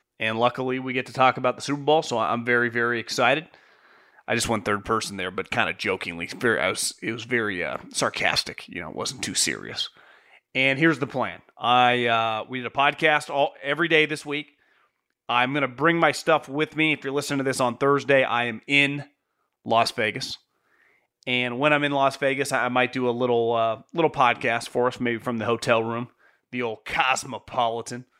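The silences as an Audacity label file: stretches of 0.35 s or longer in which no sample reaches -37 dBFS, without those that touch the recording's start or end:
3.540000	4.280000	silence
9.970000	10.550000	silence
14.420000	15.290000	silence
19.030000	19.660000	silence
20.350000	21.230000	silence
26.060000	26.530000	silence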